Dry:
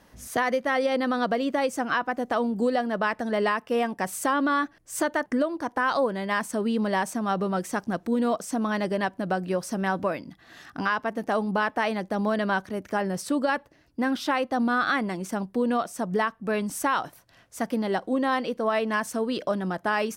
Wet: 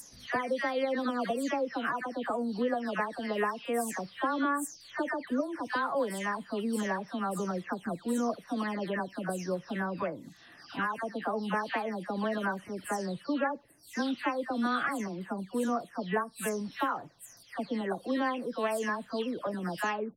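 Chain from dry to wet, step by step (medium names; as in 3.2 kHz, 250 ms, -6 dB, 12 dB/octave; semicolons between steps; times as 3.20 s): delay that grows with frequency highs early, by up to 333 ms; trim -5.5 dB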